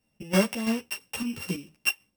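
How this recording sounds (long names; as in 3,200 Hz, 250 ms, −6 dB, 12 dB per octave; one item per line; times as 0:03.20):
a buzz of ramps at a fixed pitch in blocks of 16 samples
chopped level 3 Hz, depth 60%, duty 65%
a shimmering, thickened sound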